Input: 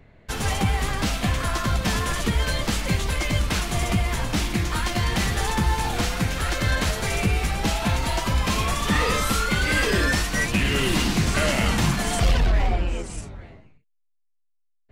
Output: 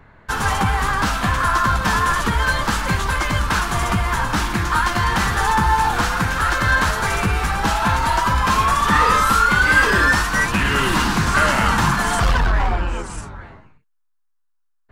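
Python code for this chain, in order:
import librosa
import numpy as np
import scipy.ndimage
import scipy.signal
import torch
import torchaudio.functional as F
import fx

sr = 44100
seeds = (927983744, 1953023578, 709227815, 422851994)

p1 = fx.band_shelf(x, sr, hz=1200.0, db=11.0, octaves=1.2)
p2 = 10.0 ** (-20.0 / 20.0) * np.tanh(p1 / 10.0 ** (-20.0 / 20.0))
y = p1 + F.gain(torch.from_numpy(p2), -9.0).numpy()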